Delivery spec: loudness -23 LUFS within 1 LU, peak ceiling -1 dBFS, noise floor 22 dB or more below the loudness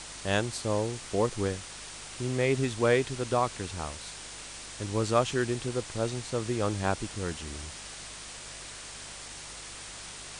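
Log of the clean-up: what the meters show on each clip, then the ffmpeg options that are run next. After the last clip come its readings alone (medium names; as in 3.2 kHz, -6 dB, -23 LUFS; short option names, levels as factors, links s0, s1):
hum 50 Hz; highest harmonic 150 Hz; hum level -55 dBFS; noise floor -44 dBFS; noise floor target -54 dBFS; loudness -32.0 LUFS; peak level -11.0 dBFS; loudness target -23.0 LUFS
-> -af "bandreject=f=50:t=h:w=4,bandreject=f=100:t=h:w=4,bandreject=f=150:t=h:w=4"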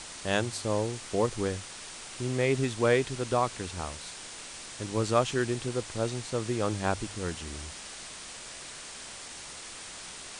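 hum not found; noise floor -44 dBFS; noise floor target -54 dBFS
-> -af "afftdn=nr=10:nf=-44"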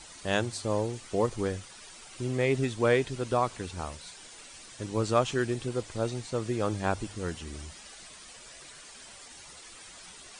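noise floor -49 dBFS; noise floor target -53 dBFS
-> -af "afftdn=nr=6:nf=-49"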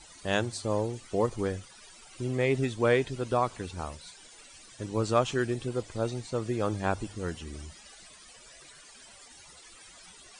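noise floor -53 dBFS; loudness -30.5 LUFS; peak level -11.0 dBFS; loudness target -23.0 LUFS
-> -af "volume=2.37"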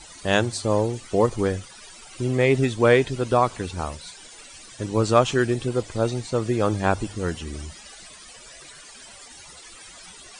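loudness -23.0 LUFS; peak level -3.5 dBFS; noise floor -45 dBFS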